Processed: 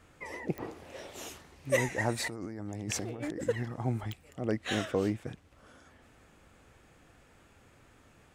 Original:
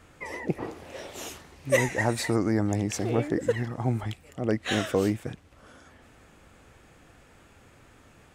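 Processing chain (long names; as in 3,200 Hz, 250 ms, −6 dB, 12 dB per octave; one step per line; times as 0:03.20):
0:02.20–0:03.44: compressor whose output falls as the input rises −33 dBFS, ratio −1
0:04.84–0:05.26: high-shelf EQ 6,000 Hz → 11,000 Hz −11.5 dB
digital clicks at 0:00.58/0:04.12, −21 dBFS
level −5 dB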